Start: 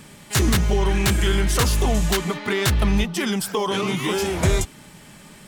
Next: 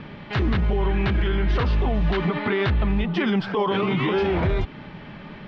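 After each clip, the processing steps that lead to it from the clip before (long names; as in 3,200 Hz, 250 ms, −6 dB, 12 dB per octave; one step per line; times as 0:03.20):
Bessel low-pass filter 2,300 Hz, order 8
downward compressor 2.5 to 1, threshold −22 dBFS, peak gain reduction 6 dB
brickwall limiter −21.5 dBFS, peak gain reduction 9 dB
level +7 dB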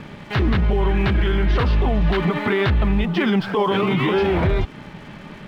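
dead-zone distortion −50.5 dBFS
level +3.5 dB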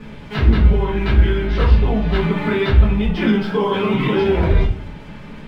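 rectangular room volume 33 cubic metres, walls mixed, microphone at 1.4 metres
level −8.5 dB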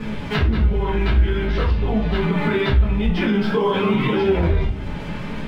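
in parallel at −2 dB: brickwall limiter −13 dBFS, peak gain reduction 11.5 dB
on the sum: downward compressor 2.5 to 1, threshold −22 dBFS, peak gain reduction 12.5 dB
flanger 0.49 Hz, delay 8.4 ms, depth 9.3 ms, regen +62%
level +6.5 dB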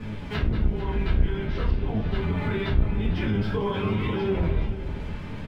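sub-octave generator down 1 octave, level +1 dB
multi-tap delay 450/579 ms −13.5/−19.5 dB
level −9 dB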